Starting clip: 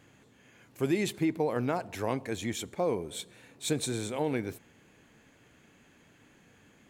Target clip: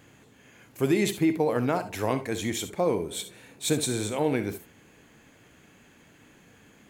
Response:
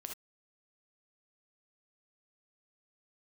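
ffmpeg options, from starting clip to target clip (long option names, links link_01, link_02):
-filter_complex "[0:a]asplit=2[link_01][link_02];[1:a]atrim=start_sample=2205,highshelf=frequency=9900:gain=11[link_03];[link_02][link_03]afir=irnorm=-1:irlink=0,volume=0.5dB[link_04];[link_01][link_04]amix=inputs=2:normalize=0"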